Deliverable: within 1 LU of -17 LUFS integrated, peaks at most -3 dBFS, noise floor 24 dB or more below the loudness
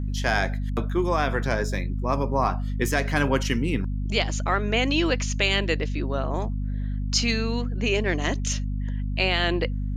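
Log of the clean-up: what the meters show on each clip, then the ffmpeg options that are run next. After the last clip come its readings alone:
hum 50 Hz; harmonics up to 250 Hz; hum level -25 dBFS; loudness -25.0 LUFS; peak -8.0 dBFS; loudness target -17.0 LUFS
-> -af "bandreject=f=50:t=h:w=4,bandreject=f=100:t=h:w=4,bandreject=f=150:t=h:w=4,bandreject=f=200:t=h:w=4,bandreject=f=250:t=h:w=4"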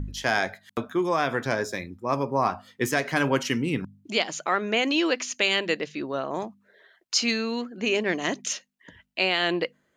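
hum none; loudness -26.5 LUFS; peak -9.5 dBFS; loudness target -17.0 LUFS
-> -af "volume=9.5dB,alimiter=limit=-3dB:level=0:latency=1"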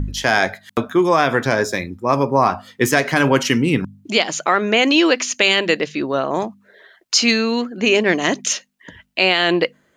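loudness -17.5 LUFS; peak -3.0 dBFS; noise floor -61 dBFS

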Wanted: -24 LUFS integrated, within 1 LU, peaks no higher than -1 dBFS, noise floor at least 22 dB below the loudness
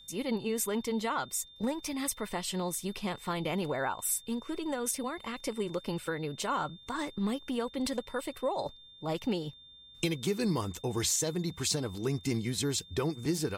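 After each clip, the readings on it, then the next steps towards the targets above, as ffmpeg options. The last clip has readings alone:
steady tone 3600 Hz; tone level -52 dBFS; loudness -33.5 LUFS; peak -17.0 dBFS; loudness target -24.0 LUFS
-> -af "bandreject=f=3.6k:w=30"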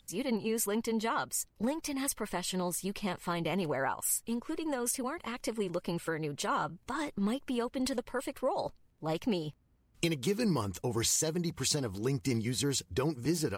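steady tone none; loudness -33.5 LUFS; peak -17.0 dBFS; loudness target -24.0 LUFS
-> -af "volume=9.5dB"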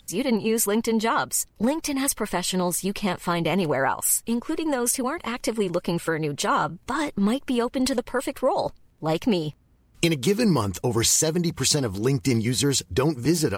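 loudness -24.0 LUFS; peak -7.5 dBFS; noise floor -57 dBFS

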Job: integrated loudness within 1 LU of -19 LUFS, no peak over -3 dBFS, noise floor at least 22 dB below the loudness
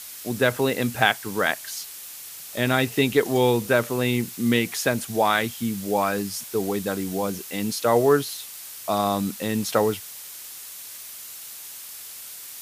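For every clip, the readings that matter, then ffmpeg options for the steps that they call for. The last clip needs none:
noise floor -40 dBFS; noise floor target -46 dBFS; loudness -23.5 LUFS; peak -2.5 dBFS; loudness target -19.0 LUFS
-> -af "afftdn=nr=6:nf=-40"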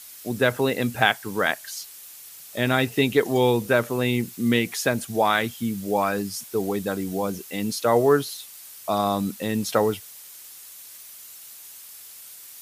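noise floor -44 dBFS; noise floor target -46 dBFS
-> -af "afftdn=nr=6:nf=-44"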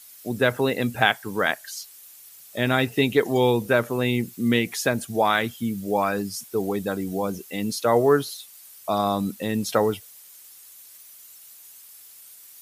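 noise floor -48 dBFS; loudness -23.5 LUFS; peak -2.5 dBFS; loudness target -19.0 LUFS
-> -af "volume=4.5dB,alimiter=limit=-3dB:level=0:latency=1"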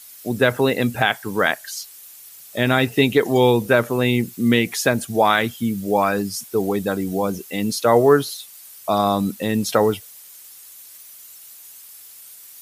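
loudness -19.5 LUFS; peak -3.0 dBFS; noise floor -43 dBFS

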